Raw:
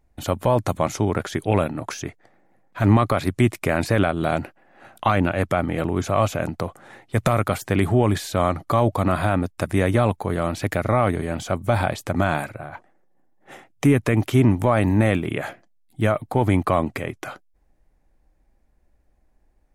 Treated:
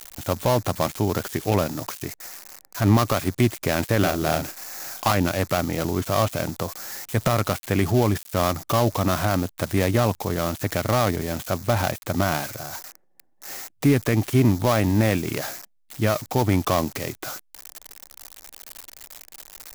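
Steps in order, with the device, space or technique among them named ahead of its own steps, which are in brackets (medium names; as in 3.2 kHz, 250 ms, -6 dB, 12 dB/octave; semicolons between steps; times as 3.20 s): budget class-D amplifier (dead-time distortion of 0.17 ms; zero-crossing glitches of -18 dBFS); 3.98–5.12 s: doubling 39 ms -6 dB; trim -1.5 dB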